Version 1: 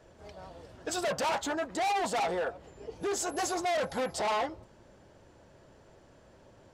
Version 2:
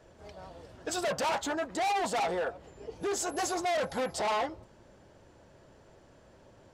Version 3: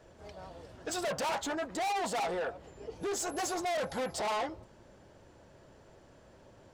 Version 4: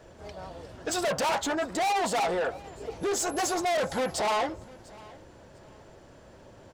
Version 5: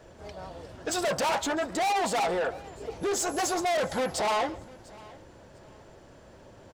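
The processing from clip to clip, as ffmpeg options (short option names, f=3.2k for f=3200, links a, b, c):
-af anull
-af "asoftclip=type=tanh:threshold=-29dB"
-af "aecho=1:1:699|1398:0.075|0.0202,volume=6dB"
-af "aecho=1:1:139:0.0891"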